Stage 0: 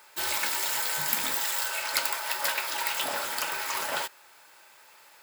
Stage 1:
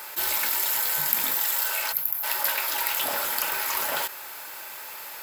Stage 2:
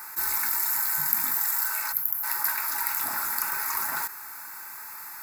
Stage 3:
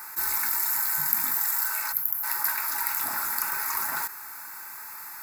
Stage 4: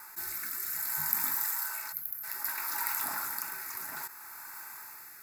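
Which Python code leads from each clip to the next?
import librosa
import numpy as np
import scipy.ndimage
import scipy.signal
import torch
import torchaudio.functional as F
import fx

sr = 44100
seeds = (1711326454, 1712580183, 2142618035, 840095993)

y1 = fx.spec_box(x, sr, start_s=1.92, length_s=0.31, low_hz=210.0, high_hz=11000.0, gain_db=-17)
y1 = fx.peak_eq(y1, sr, hz=13000.0, db=13.5, octaves=0.31)
y1 = fx.env_flatten(y1, sr, amount_pct=50)
y1 = y1 * 10.0 ** (-4.5 / 20.0)
y2 = fx.fixed_phaser(y1, sr, hz=1300.0, stages=4)
y3 = y2
y4 = fx.rotary(y3, sr, hz=0.6)
y4 = y4 * 10.0 ** (-3.5 / 20.0)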